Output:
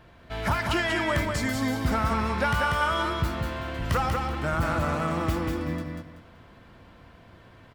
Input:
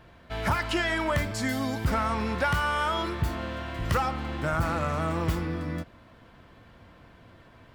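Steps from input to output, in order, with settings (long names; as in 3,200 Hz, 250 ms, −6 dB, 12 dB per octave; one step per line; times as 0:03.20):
repeating echo 190 ms, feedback 26%, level −4 dB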